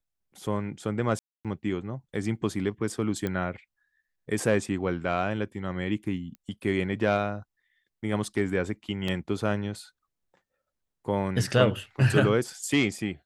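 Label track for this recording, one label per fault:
1.190000	1.450000	drop-out 257 ms
3.270000	3.270000	click −17 dBFS
6.350000	6.350000	click −30 dBFS
9.080000	9.080000	drop-out 3.5 ms

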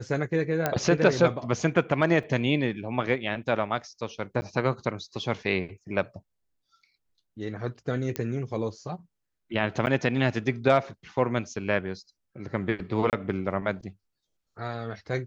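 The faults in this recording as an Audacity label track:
0.660000	0.660000	click −10 dBFS
2.230000	2.230000	drop-out 3.9 ms
4.410000	4.420000	drop-out 10 ms
8.160000	8.160000	click −14 dBFS
9.860000	9.870000	drop-out 9.7 ms
13.100000	13.130000	drop-out 28 ms

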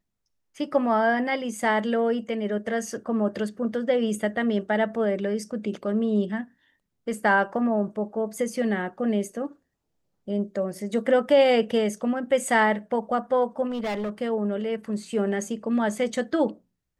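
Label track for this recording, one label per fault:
13.690000	14.100000	clipping −25.5 dBFS

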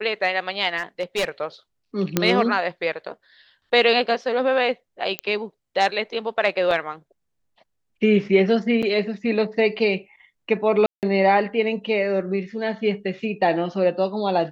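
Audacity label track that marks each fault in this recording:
0.780000	1.290000	clipping −18.5 dBFS
2.170000	2.170000	click −3 dBFS
5.190000	5.190000	click −9 dBFS
6.710000	6.710000	drop-out 2.7 ms
8.820000	8.830000	drop-out 6.8 ms
10.860000	11.030000	drop-out 168 ms

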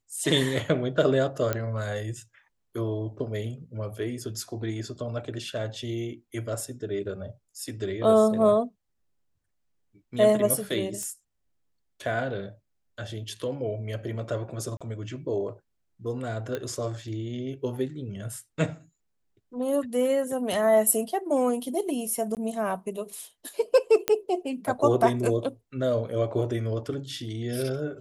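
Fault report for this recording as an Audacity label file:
1.530000	1.530000	click −12 dBFS
11.030000	11.030000	click −19 dBFS
14.770000	14.810000	drop-out 36 ms
16.550000	16.550000	click −18 dBFS
22.350000	22.370000	drop-out 18 ms
24.080000	24.080000	click −7 dBFS

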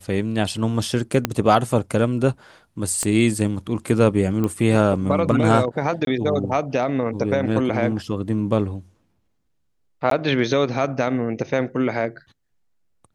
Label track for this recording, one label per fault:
1.250000	1.250000	click −4 dBFS
3.030000	3.030000	click −11 dBFS
4.440000	4.440000	click −12 dBFS
6.050000	6.070000	drop-out 22 ms
10.100000	10.110000	drop-out 13 ms

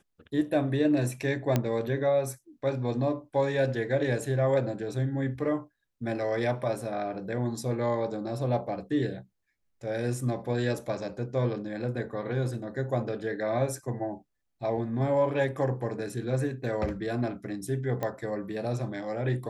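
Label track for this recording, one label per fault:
1.560000	1.560000	click −11 dBFS
18.030000	18.030000	click −18 dBFS

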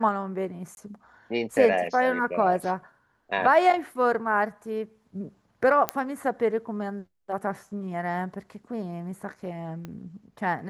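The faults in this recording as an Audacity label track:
0.750000	0.770000	drop-out 21 ms
5.890000	5.890000	click −8 dBFS
9.850000	9.850000	click −24 dBFS

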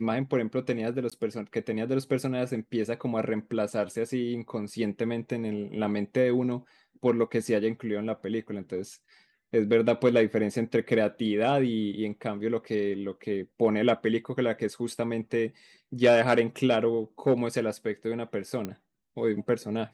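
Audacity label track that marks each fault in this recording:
1.100000	1.120000	drop-out 16 ms
18.650000	18.650000	click −19 dBFS

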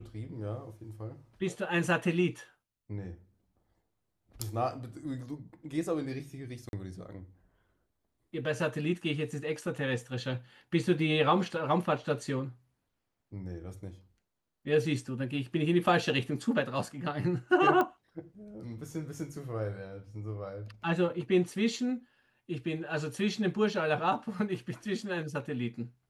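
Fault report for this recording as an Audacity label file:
6.690000	6.730000	drop-out 41 ms
17.810000	17.810000	click −17 dBFS

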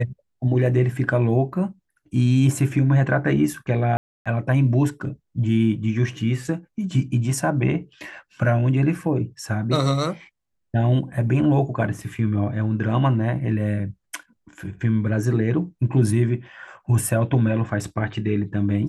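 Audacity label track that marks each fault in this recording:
3.970000	4.260000	drop-out 286 ms

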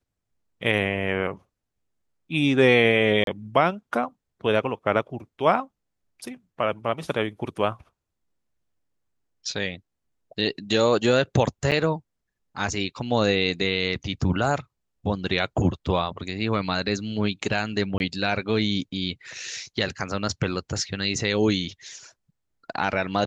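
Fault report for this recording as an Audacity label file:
3.240000	3.270000	drop-out 32 ms
11.710000	11.720000	drop-out 7.5 ms
17.980000	18.000000	drop-out 21 ms

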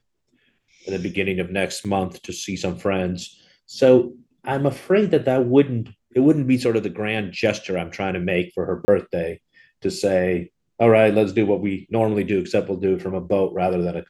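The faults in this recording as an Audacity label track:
1.840000	1.850000	drop-out 7.1 ms
8.850000	8.880000	drop-out 30 ms

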